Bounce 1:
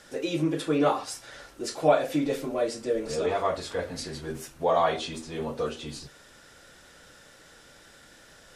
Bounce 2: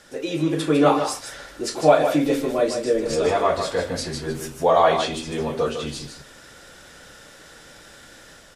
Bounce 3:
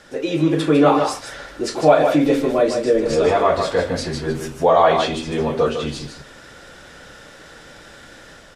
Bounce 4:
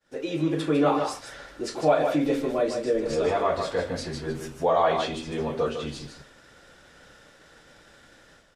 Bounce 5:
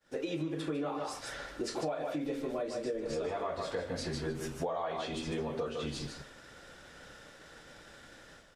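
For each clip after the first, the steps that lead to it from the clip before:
automatic gain control gain up to 5 dB; on a send: single-tap delay 152 ms −7.5 dB; on the sum: level +1.5 dB
in parallel at 0 dB: brickwall limiter −12.5 dBFS, peak gain reduction 9.5 dB; on the sum: low-pass filter 3,800 Hz 6 dB per octave; level −1 dB
downward expander −38 dBFS; level −8 dB
downward compressor 12 to 1, threshold −32 dBFS, peak gain reduction 17 dB

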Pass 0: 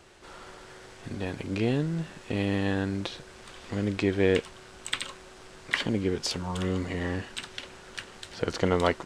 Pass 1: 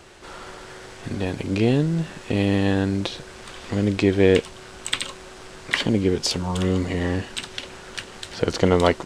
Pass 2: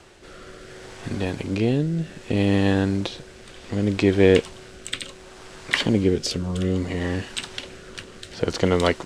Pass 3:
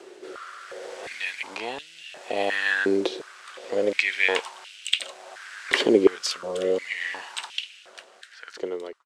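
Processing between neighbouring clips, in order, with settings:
dynamic equaliser 1,500 Hz, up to −4 dB, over −45 dBFS, Q 1; level +7.5 dB
rotating-speaker cabinet horn 0.65 Hz; level +1 dB
fade-out on the ending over 2.38 s; high-pass on a step sequencer 2.8 Hz 390–2,800 Hz; level −1 dB

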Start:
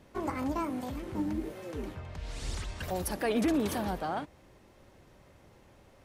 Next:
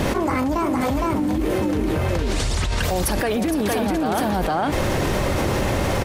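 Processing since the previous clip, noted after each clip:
on a send: single-tap delay 461 ms −3.5 dB
on the sum: envelope flattener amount 100%
level +4 dB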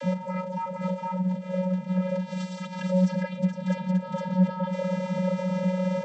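channel vocoder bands 32, square 184 Hz
level −4 dB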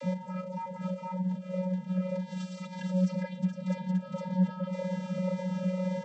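phaser whose notches keep moving one way falling 1.9 Hz
level −4.5 dB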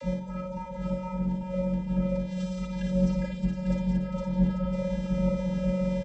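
sub-octave generator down 2 octaves, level −5 dB
on a send: multi-tap delay 56/71/153/712/842 ms −5/−17/−17/−13.5/−8.5 dB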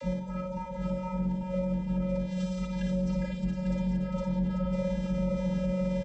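brickwall limiter −22.5 dBFS, peak gain reduction 8 dB

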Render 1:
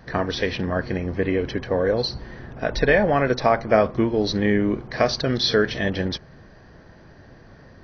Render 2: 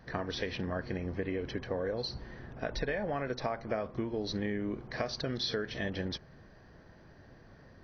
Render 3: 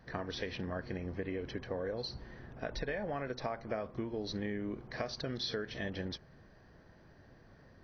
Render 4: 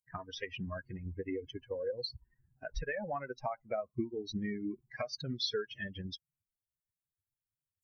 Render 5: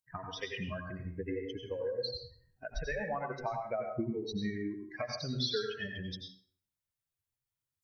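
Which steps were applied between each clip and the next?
downward compressor 6 to 1, threshold −22 dBFS, peak gain reduction 10 dB; level −8.5 dB
every ending faded ahead of time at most 400 dB per second; level −3.5 dB
spectral dynamics exaggerated over time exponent 3; level +7 dB
dense smooth reverb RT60 0.51 s, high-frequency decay 0.8×, pre-delay 75 ms, DRR 2.5 dB

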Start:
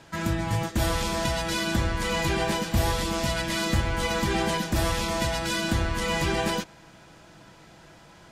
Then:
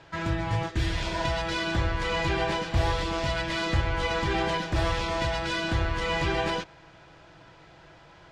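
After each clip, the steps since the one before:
low-pass filter 4,100 Hz 12 dB per octave
parametric band 220 Hz −13.5 dB 0.41 octaves
healed spectral selection 0:00.78–0:01.23, 460–1,500 Hz both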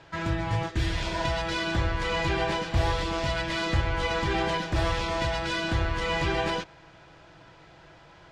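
no processing that can be heard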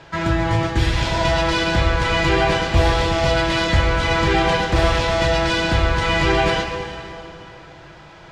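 dense smooth reverb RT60 2.8 s, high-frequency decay 0.85×, DRR 3.5 dB
level +8 dB

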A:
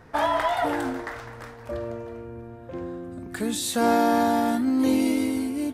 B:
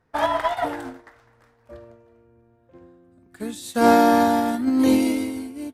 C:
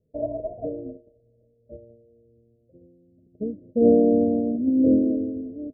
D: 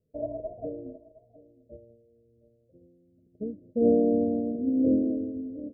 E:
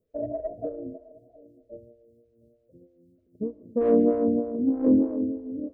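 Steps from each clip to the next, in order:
expander for the loud parts 2.5 to 1, over −35 dBFS; level +7 dB
in parallel at −4 dB: bit-depth reduction 6 bits, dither none; on the sum: Chebyshev low-pass with heavy ripple 640 Hz, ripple 6 dB
single-tap delay 714 ms −19.5 dB; level −5 dB
in parallel at −8 dB: soft clipping −25 dBFS, distortion −9 dB; on the sum: convolution reverb RT60 1.6 s, pre-delay 83 ms, DRR 17.5 dB; phaser with staggered stages 3.2 Hz; level +2.5 dB

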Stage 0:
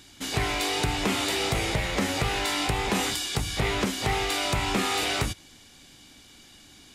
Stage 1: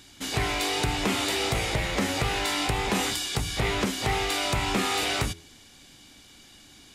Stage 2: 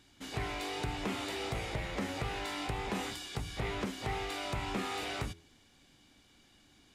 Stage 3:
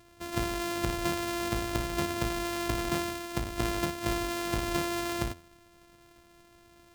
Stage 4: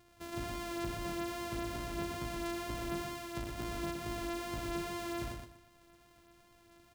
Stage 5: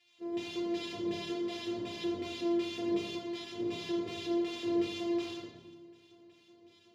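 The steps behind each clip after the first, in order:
hum removal 83.14 Hz, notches 5
high-shelf EQ 3,400 Hz −8 dB; level −9 dB
samples sorted by size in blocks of 128 samples; level +5.5 dB
tape wow and flutter 16 cents; soft clipping −28 dBFS, distortion −13 dB; repeating echo 120 ms, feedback 23%, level −5 dB; level −6 dB
auto-filter band-pass square 2.7 Hz 410–3,300 Hz; convolution reverb RT60 1.1 s, pre-delay 3 ms, DRR −3 dB; level −2.5 dB

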